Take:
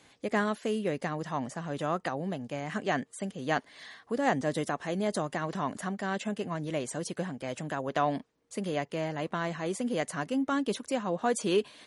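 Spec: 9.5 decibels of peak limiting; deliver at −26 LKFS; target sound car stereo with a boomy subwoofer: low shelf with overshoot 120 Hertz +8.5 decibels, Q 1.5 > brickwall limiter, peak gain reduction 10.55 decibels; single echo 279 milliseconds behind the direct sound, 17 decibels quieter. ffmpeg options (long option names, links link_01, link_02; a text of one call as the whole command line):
ffmpeg -i in.wav -af "alimiter=limit=-23.5dB:level=0:latency=1,lowshelf=frequency=120:width_type=q:width=1.5:gain=8.5,aecho=1:1:279:0.141,volume=16dB,alimiter=limit=-17dB:level=0:latency=1" out.wav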